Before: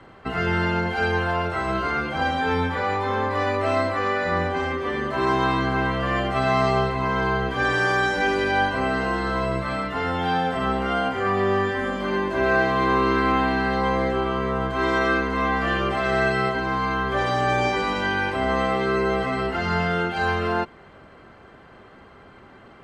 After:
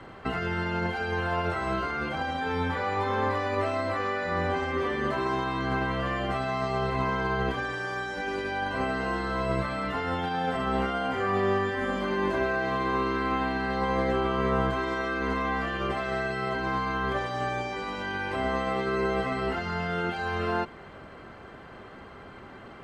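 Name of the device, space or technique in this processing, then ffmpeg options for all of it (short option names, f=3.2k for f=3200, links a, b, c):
de-esser from a sidechain: -filter_complex "[0:a]asplit=2[a][b];[b]highpass=6k,apad=whole_len=1007097[c];[a][c]sidechaincompress=threshold=-55dB:ratio=8:attack=4.7:release=31,volume=2dB"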